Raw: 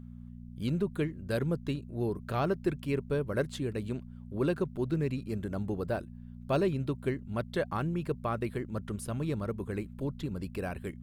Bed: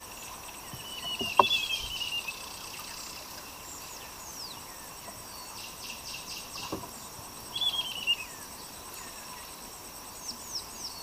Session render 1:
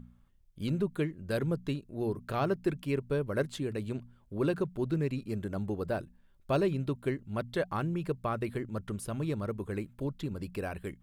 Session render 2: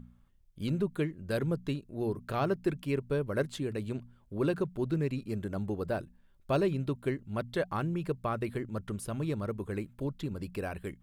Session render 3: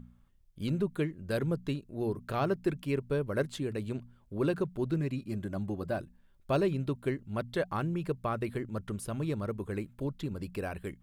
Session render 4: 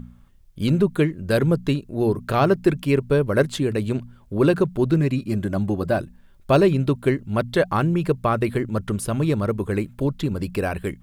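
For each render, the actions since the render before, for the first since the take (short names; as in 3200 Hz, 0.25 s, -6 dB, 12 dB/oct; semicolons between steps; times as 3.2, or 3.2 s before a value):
de-hum 60 Hz, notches 4
nothing audible
5–6.01 notch comb 450 Hz
gain +12 dB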